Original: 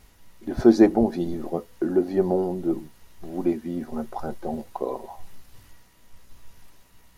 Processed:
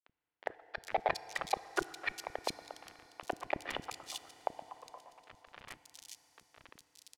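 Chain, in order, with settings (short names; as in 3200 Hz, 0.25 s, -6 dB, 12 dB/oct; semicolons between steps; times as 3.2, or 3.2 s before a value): short-time reversal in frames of 0.129 s; comb 1.7 ms, depth 60%; dynamic EQ 310 Hz, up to -4 dB, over -39 dBFS, Q 2; in parallel at 0 dB: limiter -23 dBFS, peak gain reduction 10.5 dB; on the sum: negative-ratio compressor -29 dBFS, ratio -0.5; LFO high-pass saw up 8.5 Hz 760–3600 Hz; sample gate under -39.5 dBFS; flipped gate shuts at -30 dBFS, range -36 dB; air absorption 58 m; three bands offset in time mids, lows, highs 30/410 ms, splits 310/3200 Hz; on a send at -14.5 dB: reverb RT60 4.7 s, pre-delay 3 ms; on the sum: gain +14.5 dB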